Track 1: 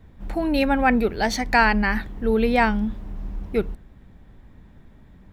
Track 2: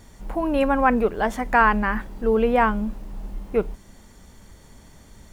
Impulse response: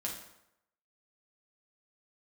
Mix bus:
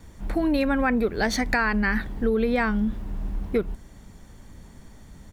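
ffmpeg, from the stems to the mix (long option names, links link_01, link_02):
-filter_complex "[0:a]alimiter=limit=-11dB:level=0:latency=1:release=353,volume=0.5dB[link_01];[1:a]adelay=1.1,volume=-4dB[link_02];[link_01][link_02]amix=inputs=2:normalize=0,acompressor=threshold=-19dB:ratio=6"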